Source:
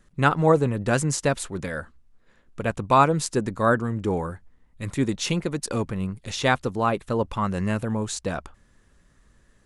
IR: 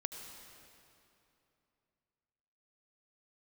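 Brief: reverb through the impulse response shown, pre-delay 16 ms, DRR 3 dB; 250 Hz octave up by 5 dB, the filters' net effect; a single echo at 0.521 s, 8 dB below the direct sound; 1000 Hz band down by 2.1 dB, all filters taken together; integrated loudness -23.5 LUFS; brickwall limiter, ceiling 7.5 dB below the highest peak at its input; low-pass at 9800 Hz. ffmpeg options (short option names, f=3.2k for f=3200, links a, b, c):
-filter_complex "[0:a]lowpass=9.8k,equalizer=f=250:t=o:g=6.5,equalizer=f=1k:t=o:g=-3,alimiter=limit=-12dB:level=0:latency=1,aecho=1:1:521:0.398,asplit=2[a][b];[1:a]atrim=start_sample=2205,adelay=16[c];[b][c]afir=irnorm=-1:irlink=0,volume=-2.5dB[d];[a][d]amix=inputs=2:normalize=0,volume=-0.5dB"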